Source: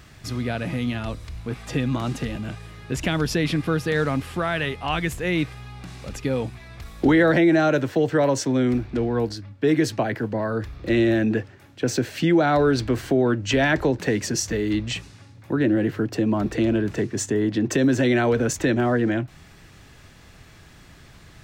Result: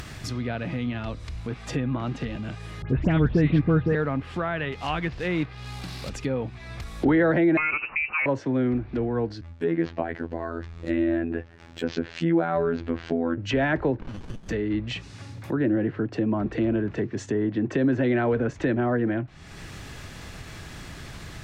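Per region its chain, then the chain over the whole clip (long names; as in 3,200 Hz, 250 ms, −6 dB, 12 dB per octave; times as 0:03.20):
0:02.82–0:03.95: low-shelf EQ 310 Hz +9.5 dB + all-pass dispersion highs, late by 84 ms, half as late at 2,400 Hz
0:04.72–0:06.10: high shelf with overshoot 6,500 Hz −12 dB, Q 3 + log-companded quantiser 4 bits
0:07.57–0:08.26: voice inversion scrambler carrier 2,800 Hz + multiband upward and downward compressor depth 40%
0:09.41–0:13.38: phases set to zero 83.6 Hz + linearly interpolated sample-rate reduction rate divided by 4×
0:14.01–0:14.49: downward compressor 2.5 to 1, threshold −27 dBFS + voice inversion scrambler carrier 3,300 Hz + windowed peak hold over 65 samples
whole clip: treble cut that deepens with the level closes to 2,000 Hz, closed at −19.5 dBFS; upward compression, threshold −25 dBFS; level −3 dB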